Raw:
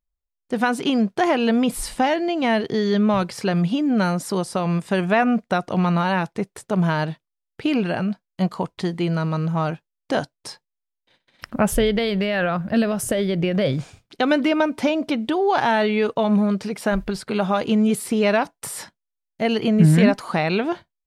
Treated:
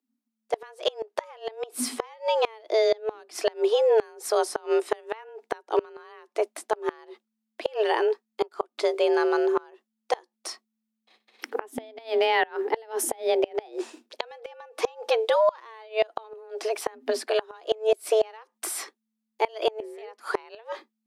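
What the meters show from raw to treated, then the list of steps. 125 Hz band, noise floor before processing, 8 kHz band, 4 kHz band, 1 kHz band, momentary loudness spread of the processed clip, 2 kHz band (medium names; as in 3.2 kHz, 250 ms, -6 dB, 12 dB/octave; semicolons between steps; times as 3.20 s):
under -35 dB, -82 dBFS, -2.0 dB, -4.5 dB, -6.0 dB, 16 LU, -8.5 dB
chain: frequency shift +220 Hz; inverted gate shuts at -11 dBFS, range -27 dB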